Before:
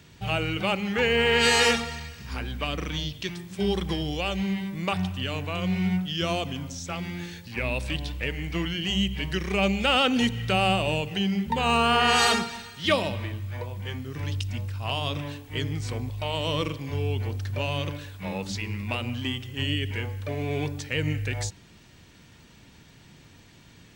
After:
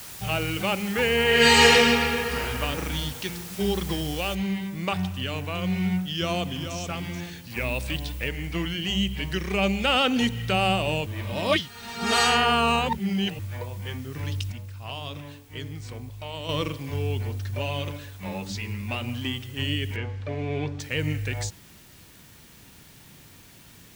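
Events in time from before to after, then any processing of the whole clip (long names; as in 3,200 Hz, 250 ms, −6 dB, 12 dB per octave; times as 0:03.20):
0:01.26–0:02.41: thrown reverb, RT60 2.8 s, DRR −4.5 dB
0:04.35: noise floor change −41 dB −54 dB
0:05.91–0:06.77: delay throw 430 ms, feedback 25%, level −8 dB
0:07.50–0:08.29: high-shelf EQ 10,000 Hz +8 dB
0:11.06–0:13.39: reverse
0:14.52–0:16.49: clip gain −6.5 dB
0:17.23–0:19.08: notch comb filter 160 Hz
0:19.96–0:20.80: high-frequency loss of the air 140 metres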